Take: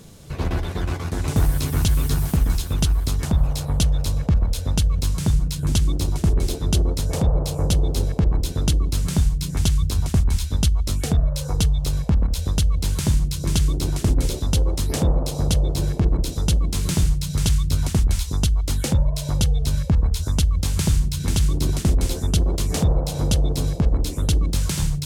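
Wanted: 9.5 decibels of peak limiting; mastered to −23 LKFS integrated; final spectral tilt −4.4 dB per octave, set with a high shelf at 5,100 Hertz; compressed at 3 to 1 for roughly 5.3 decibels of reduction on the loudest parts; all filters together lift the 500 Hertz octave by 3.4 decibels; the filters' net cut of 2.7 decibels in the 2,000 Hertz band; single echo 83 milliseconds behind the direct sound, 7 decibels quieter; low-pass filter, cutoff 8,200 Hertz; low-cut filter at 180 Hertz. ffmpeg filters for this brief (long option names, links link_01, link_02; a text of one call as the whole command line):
ffmpeg -i in.wav -af "highpass=180,lowpass=8200,equalizer=frequency=500:width_type=o:gain=4.5,equalizer=frequency=2000:width_type=o:gain=-5.5,highshelf=frequency=5100:gain=7.5,acompressor=threshold=-26dB:ratio=3,alimiter=limit=-18.5dB:level=0:latency=1,aecho=1:1:83:0.447,volume=8dB" out.wav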